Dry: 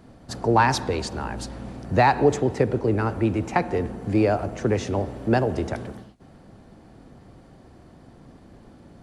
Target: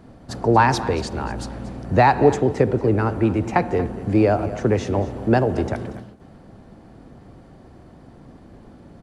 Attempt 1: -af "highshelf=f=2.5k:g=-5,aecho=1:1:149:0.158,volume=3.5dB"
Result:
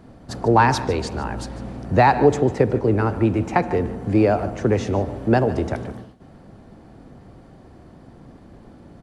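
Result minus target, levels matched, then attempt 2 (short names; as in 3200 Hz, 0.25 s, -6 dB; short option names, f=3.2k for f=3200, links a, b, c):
echo 85 ms early
-af "highshelf=f=2.5k:g=-5,aecho=1:1:234:0.158,volume=3.5dB"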